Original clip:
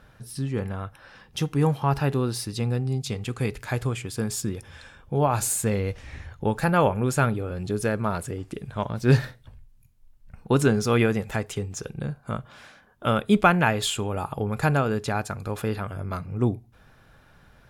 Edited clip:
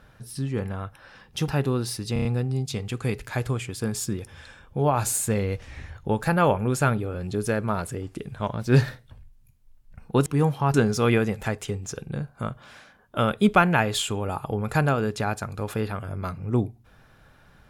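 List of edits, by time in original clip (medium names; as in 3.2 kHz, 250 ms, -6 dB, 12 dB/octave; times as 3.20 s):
1.48–1.96 s: move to 10.62 s
2.61 s: stutter 0.03 s, 5 plays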